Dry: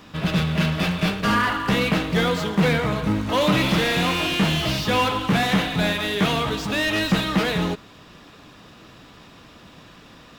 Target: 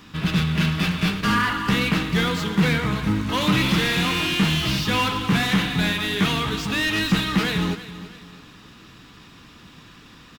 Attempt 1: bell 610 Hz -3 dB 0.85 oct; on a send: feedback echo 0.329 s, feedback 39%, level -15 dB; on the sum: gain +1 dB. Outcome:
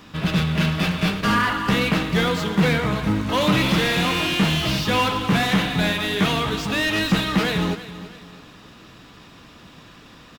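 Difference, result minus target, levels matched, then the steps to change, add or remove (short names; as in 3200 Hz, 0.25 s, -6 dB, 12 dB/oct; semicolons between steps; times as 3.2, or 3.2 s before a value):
500 Hz band +4.0 dB
change: bell 610 Hz -11 dB 0.85 oct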